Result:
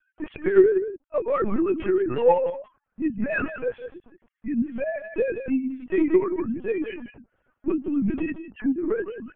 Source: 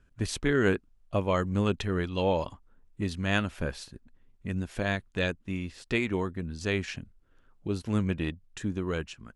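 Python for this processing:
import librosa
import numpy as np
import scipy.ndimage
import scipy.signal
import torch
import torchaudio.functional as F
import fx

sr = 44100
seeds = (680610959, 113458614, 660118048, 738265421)

p1 = fx.sine_speech(x, sr)
p2 = fx.lowpass(p1, sr, hz=2600.0, slope=6)
p3 = fx.peak_eq(p2, sr, hz=1700.0, db=-5.0, octaves=2.8)
p4 = fx.notch(p3, sr, hz=990.0, q=15.0)
p5 = 10.0 ** (-26.0 / 20.0) * np.tanh(p4 / 10.0 ** (-26.0 / 20.0))
p6 = p4 + F.gain(torch.from_numpy(p5), -4.0).numpy()
p7 = fx.chorus_voices(p6, sr, voices=2, hz=1.3, base_ms=11, depth_ms=3.0, mix_pct=55)
p8 = p7 + fx.echo_single(p7, sr, ms=172, db=-10.0, dry=0)
p9 = fx.lpc_vocoder(p8, sr, seeds[0], excitation='pitch_kept', order=10)
y = F.gain(torch.from_numpy(p9), 7.0).numpy()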